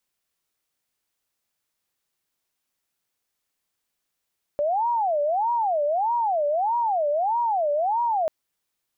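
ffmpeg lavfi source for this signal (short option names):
-f lavfi -i "aevalsrc='0.1*sin(2*PI*(767.5*t-187.5/(2*PI*1.6)*sin(2*PI*1.6*t)))':d=3.69:s=44100"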